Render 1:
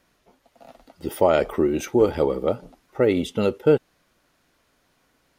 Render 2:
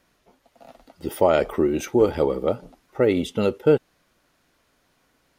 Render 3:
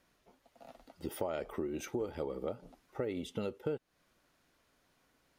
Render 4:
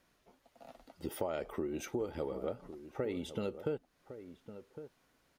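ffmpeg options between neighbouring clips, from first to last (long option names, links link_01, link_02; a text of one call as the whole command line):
ffmpeg -i in.wav -af anull out.wav
ffmpeg -i in.wav -af "acompressor=threshold=-28dB:ratio=4,volume=-7dB" out.wav
ffmpeg -i in.wav -filter_complex "[0:a]asplit=2[link_01][link_02];[link_02]adelay=1108,volume=-12dB,highshelf=frequency=4000:gain=-24.9[link_03];[link_01][link_03]amix=inputs=2:normalize=0" out.wav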